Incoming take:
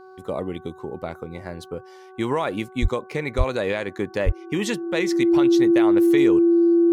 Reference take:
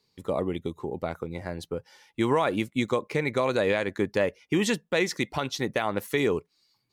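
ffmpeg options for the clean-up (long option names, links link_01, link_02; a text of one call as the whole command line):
ffmpeg -i in.wav -filter_complex "[0:a]bandreject=frequency=375.6:width_type=h:width=4,bandreject=frequency=751.2:width_type=h:width=4,bandreject=frequency=1126.8:width_type=h:width=4,bandreject=frequency=1502.4:width_type=h:width=4,bandreject=frequency=340:width=30,asplit=3[link_01][link_02][link_03];[link_01]afade=type=out:start_time=2.81:duration=0.02[link_04];[link_02]highpass=frequency=140:width=0.5412,highpass=frequency=140:width=1.3066,afade=type=in:start_time=2.81:duration=0.02,afade=type=out:start_time=2.93:duration=0.02[link_05];[link_03]afade=type=in:start_time=2.93:duration=0.02[link_06];[link_04][link_05][link_06]amix=inputs=3:normalize=0,asplit=3[link_07][link_08][link_09];[link_07]afade=type=out:start_time=3.37:duration=0.02[link_10];[link_08]highpass=frequency=140:width=0.5412,highpass=frequency=140:width=1.3066,afade=type=in:start_time=3.37:duration=0.02,afade=type=out:start_time=3.49:duration=0.02[link_11];[link_09]afade=type=in:start_time=3.49:duration=0.02[link_12];[link_10][link_11][link_12]amix=inputs=3:normalize=0,asplit=3[link_13][link_14][link_15];[link_13]afade=type=out:start_time=4.25:duration=0.02[link_16];[link_14]highpass=frequency=140:width=0.5412,highpass=frequency=140:width=1.3066,afade=type=in:start_time=4.25:duration=0.02,afade=type=out:start_time=4.37:duration=0.02[link_17];[link_15]afade=type=in:start_time=4.37:duration=0.02[link_18];[link_16][link_17][link_18]amix=inputs=3:normalize=0" out.wav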